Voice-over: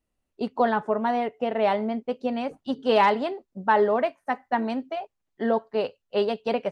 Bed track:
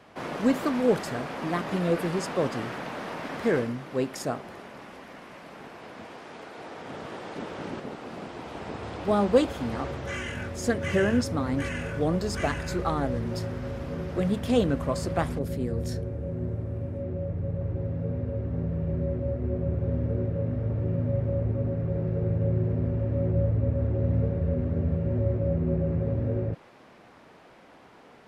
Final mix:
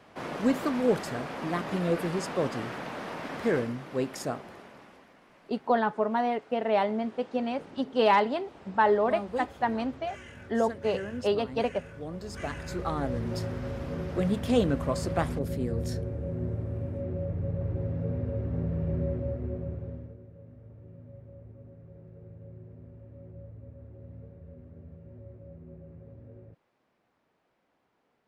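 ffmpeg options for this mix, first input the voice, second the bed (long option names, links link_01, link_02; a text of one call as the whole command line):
ffmpeg -i stem1.wav -i stem2.wav -filter_complex "[0:a]adelay=5100,volume=-2.5dB[link_01];[1:a]volume=10dB,afade=type=out:start_time=4.23:duration=0.91:silence=0.281838,afade=type=in:start_time=12.1:duration=1.26:silence=0.251189,afade=type=out:start_time=19.01:duration=1.16:silence=0.0944061[link_02];[link_01][link_02]amix=inputs=2:normalize=0" out.wav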